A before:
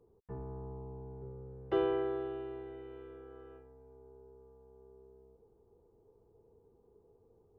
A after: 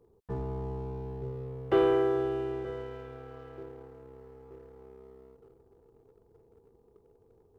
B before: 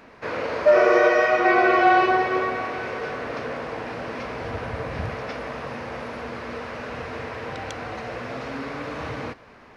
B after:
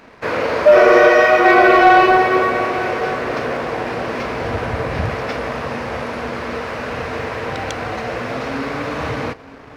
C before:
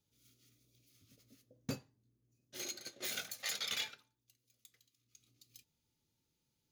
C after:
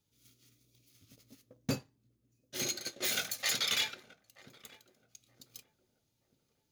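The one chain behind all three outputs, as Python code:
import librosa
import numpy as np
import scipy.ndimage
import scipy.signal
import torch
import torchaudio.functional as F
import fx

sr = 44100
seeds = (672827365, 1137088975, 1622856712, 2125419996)

y = fx.echo_filtered(x, sr, ms=927, feedback_pct=50, hz=830.0, wet_db=-14.5)
y = fx.leveller(y, sr, passes=1)
y = y * librosa.db_to_amplitude(4.5)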